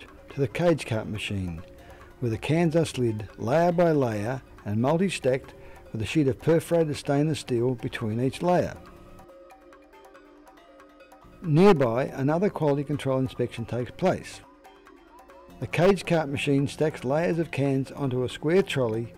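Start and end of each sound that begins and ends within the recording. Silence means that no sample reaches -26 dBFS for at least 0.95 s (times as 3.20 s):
11.46–14.18 s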